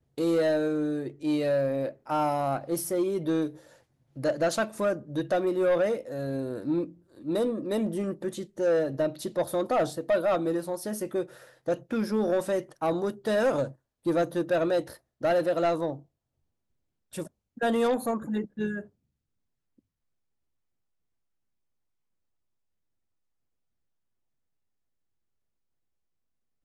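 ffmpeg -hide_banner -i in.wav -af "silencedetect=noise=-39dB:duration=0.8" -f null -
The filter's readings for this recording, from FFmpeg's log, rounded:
silence_start: 15.97
silence_end: 17.13 | silence_duration: 1.17
silence_start: 18.81
silence_end: 26.64 | silence_duration: 7.83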